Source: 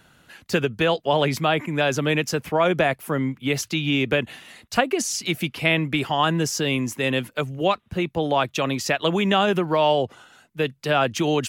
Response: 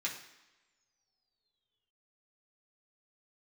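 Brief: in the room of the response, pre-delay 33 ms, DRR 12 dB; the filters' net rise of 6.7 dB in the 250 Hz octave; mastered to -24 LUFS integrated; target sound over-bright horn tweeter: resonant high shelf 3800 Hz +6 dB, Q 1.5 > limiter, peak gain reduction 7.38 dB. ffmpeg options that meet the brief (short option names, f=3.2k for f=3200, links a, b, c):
-filter_complex "[0:a]equalizer=f=250:t=o:g=9,asplit=2[a][b];[1:a]atrim=start_sample=2205,adelay=33[c];[b][c]afir=irnorm=-1:irlink=0,volume=-15dB[d];[a][d]amix=inputs=2:normalize=0,highshelf=f=3.8k:t=q:w=1.5:g=6,volume=-2.5dB,alimiter=limit=-14dB:level=0:latency=1"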